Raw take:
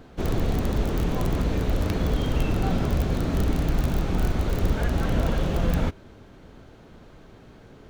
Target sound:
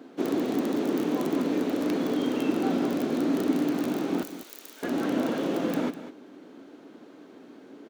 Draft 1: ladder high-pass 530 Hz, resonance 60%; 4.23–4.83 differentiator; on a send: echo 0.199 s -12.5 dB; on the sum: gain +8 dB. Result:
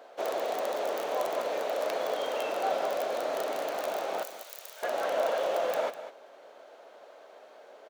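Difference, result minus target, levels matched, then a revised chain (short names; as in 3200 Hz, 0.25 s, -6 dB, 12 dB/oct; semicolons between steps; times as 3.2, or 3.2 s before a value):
250 Hz band -18.5 dB
ladder high-pass 250 Hz, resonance 60%; 4.23–4.83 differentiator; on a send: echo 0.199 s -12.5 dB; on the sum: gain +8 dB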